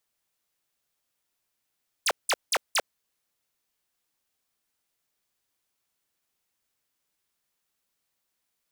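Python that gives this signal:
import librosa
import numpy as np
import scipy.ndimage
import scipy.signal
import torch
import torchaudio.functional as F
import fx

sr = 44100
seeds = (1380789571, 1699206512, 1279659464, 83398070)

y = fx.laser_zaps(sr, level_db=-23.0, start_hz=11000.0, end_hz=400.0, length_s=0.05, wave='square', shots=4, gap_s=0.18)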